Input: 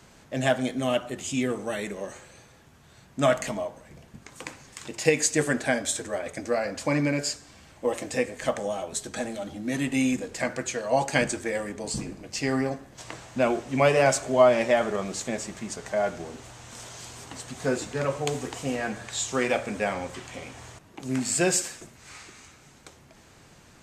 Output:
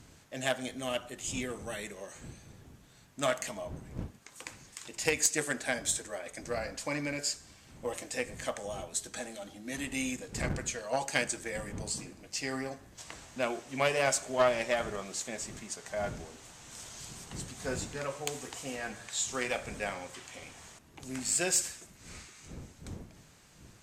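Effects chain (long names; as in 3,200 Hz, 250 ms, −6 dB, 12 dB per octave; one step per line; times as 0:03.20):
wind on the microphone 140 Hz −34 dBFS
harmonic generator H 2 −12 dB, 6 −20 dB, 8 −22 dB, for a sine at −4.5 dBFS
spectral tilt +2 dB per octave
level −8 dB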